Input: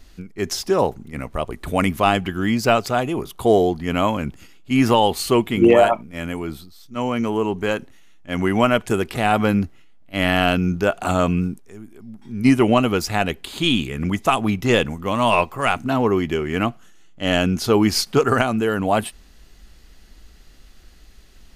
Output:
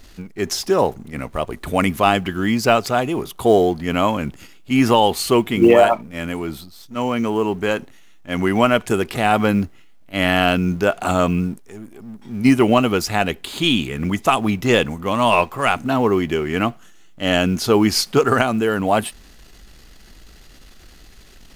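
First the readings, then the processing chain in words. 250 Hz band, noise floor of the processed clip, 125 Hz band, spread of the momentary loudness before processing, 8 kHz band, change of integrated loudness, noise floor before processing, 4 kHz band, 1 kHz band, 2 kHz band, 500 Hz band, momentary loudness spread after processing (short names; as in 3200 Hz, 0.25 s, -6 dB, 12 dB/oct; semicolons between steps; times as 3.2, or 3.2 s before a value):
+1.0 dB, -45 dBFS, 0.0 dB, 12 LU, +2.5 dB, +1.5 dB, -47 dBFS, +2.0 dB, +1.5 dB, +2.0 dB, +1.5 dB, 12 LU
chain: G.711 law mismatch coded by mu; low shelf 95 Hz -5.5 dB; gain +1.5 dB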